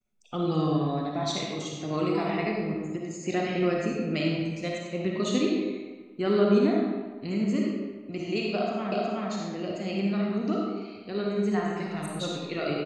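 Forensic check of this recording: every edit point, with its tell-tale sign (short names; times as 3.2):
8.92 repeat of the last 0.37 s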